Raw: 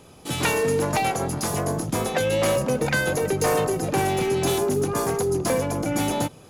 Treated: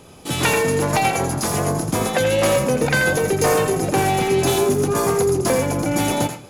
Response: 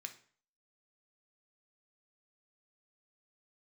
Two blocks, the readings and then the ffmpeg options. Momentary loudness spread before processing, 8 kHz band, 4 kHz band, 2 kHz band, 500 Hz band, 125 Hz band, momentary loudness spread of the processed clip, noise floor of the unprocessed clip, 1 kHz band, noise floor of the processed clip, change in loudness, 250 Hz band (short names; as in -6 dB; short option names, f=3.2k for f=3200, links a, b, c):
4 LU, +5.0 dB, +4.5 dB, +5.5 dB, +4.5 dB, +4.5 dB, 4 LU, -48 dBFS, +4.5 dB, -39 dBFS, +4.5 dB, +4.0 dB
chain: -filter_complex "[0:a]asplit=2[a][b];[1:a]atrim=start_sample=2205,adelay=85[c];[b][c]afir=irnorm=-1:irlink=0,volume=-2.5dB[d];[a][d]amix=inputs=2:normalize=0,volume=4dB"